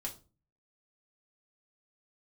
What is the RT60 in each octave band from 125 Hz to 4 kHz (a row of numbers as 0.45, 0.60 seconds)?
0.65, 0.55, 0.35, 0.30, 0.25, 0.25 seconds